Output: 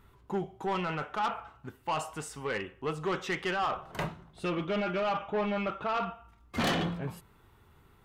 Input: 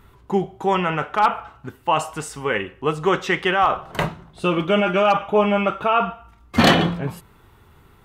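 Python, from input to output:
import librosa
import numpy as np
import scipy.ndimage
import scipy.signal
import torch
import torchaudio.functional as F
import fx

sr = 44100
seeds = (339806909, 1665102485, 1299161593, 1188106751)

y = 10.0 ** (-16.0 / 20.0) * np.tanh(x / 10.0 ** (-16.0 / 20.0))
y = fx.air_absorb(y, sr, metres=71.0, at=(4.51, 6.02))
y = y * 10.0 ** (-9.0 / 20.0)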